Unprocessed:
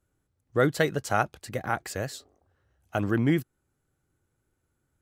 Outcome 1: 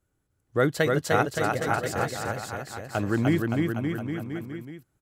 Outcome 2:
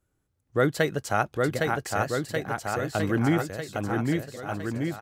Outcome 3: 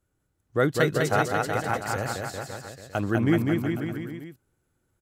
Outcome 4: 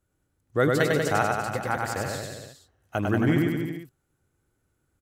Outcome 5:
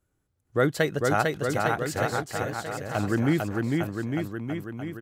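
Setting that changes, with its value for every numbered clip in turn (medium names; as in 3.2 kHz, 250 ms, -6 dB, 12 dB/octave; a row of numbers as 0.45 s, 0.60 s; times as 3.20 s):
bouncing-ball echo, first gap: 300 ms, 810 ms, 200 ms, 100 ms, 450 ms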